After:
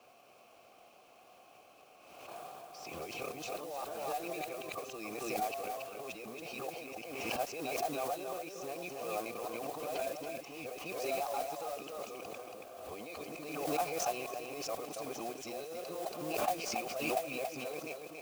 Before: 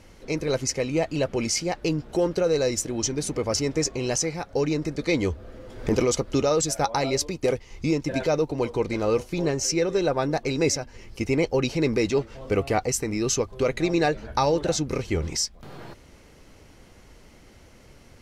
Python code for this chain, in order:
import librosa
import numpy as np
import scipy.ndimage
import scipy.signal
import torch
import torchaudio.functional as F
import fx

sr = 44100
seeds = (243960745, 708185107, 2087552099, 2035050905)

p1 = np.flip(x).copy()
p2 = scipy.signal.sosfilt(scipy.signal.butter(2, 96.0, 'highpass', fs=sr, output='sos'), p1)
p3 = fx.high_shelf(p2, sr, hz=4500.0, db=11.5)
p4 = fx.over_compress(p3, sr, threshold_db=-28.0, ratio=-1.0)
p5 = fx.vowel_filter(p4, sr, vowel='a')
p6 = fx.mod_noise(p5, sr, seeds[0], snr_db=12)
p7 = p6 + fx.echo_single(p6, sr, ms=279, db=-5.5, dry=0)
y = fx.pre_swell(p7, sr, db_per_s=40.0)